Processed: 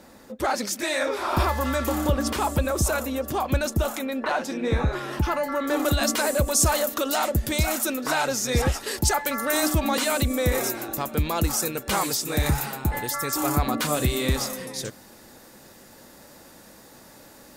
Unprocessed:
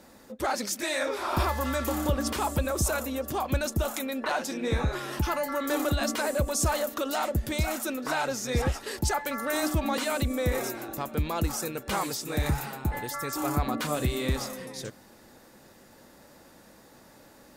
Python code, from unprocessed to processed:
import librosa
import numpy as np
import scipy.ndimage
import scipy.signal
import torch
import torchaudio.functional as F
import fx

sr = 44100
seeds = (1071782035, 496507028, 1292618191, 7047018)

y = fx.high_shelf(x, sr, hz=4100.0, db=fx.steps((0.0, -2.0), (3.95, -8.0), (5.84, 5.5)))
y = F.gain(torch.from_numpy(y), 4.0).numpy()